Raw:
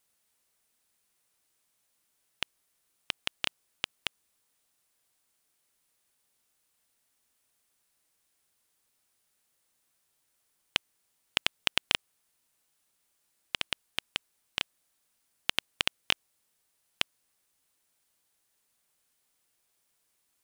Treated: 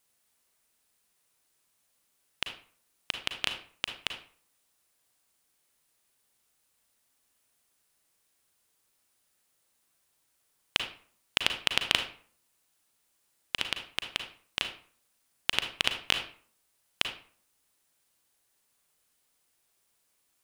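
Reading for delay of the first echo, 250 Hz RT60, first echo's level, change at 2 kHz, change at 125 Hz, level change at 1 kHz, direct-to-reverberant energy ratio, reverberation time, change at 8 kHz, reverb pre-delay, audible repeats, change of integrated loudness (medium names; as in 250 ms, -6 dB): no echo, 0.55 s, no echo, +2.0 dB, +2.0 dB, +2.5 dB, 5.5 dB, 0.50 s, +1.5 dB, 35 ms, no echo, +2.0 dB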